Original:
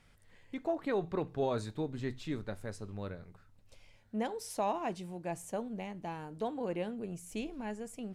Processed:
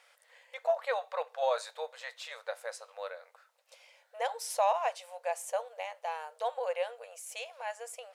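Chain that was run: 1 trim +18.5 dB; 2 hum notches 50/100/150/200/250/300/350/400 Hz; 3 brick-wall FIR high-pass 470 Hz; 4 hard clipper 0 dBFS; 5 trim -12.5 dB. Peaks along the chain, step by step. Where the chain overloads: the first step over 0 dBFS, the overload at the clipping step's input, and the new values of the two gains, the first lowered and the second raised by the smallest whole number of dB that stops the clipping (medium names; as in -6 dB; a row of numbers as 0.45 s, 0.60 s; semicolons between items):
-4.5 dBFS, -3.5 dBFS, -4.0 dBFS, -4.0 dBFS, -16.5 dBFS; nothing clips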